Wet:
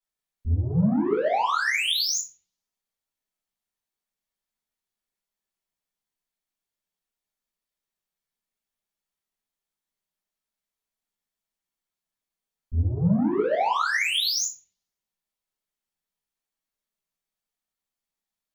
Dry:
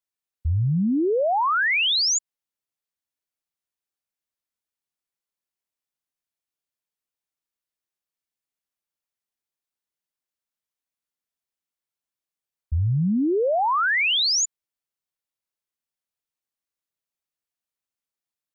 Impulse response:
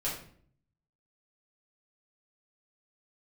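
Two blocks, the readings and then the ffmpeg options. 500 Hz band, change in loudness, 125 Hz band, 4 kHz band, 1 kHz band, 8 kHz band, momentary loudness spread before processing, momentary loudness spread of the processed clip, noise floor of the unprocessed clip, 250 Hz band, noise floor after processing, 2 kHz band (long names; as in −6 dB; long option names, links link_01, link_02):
−2.5 dB, −3.0 dB, −1.5 dB, −4.0 dB, −2.5 dB, can't be measured, 8 LU, 7 LU, below −85 dBFS, −0.5 dB, below −85 dBFS, −3.5 dB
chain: -filter_complex "[0:a]asoftclip=type=tanh:threshold=-24.5dB[link_01];[1:a]atrim=start_sample=2205,asetrate=61740,aresample=44100[link_02];[link_01][link_02]afir=irnorm=-1:irlink=0"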